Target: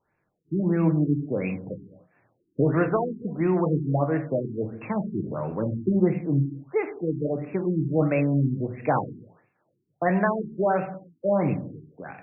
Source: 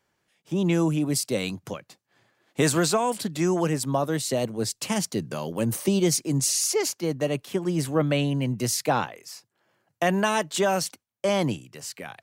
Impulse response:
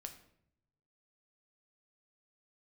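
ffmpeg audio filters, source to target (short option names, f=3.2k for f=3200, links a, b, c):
-filter_complex "[1:a]atrim=start_sample=2205,afade=t=out:st=0.38:d=0.01,atrim=end_sample=17199[a];[0:a][a]afir=irnorm=-1:irlink=0,afftfilt=real='re*lt(b*sr/1024,410*pow(2800/410,0.5+0.5*sin(2*PI*1.5*pts/sr)))':imag='im*lt(b*sr/1024,410*pow(2800/410,0.5+0.5*sin(2*PI*1.5*pts/sr)))':win_size=1024:overlap=0.75,volume=5dB"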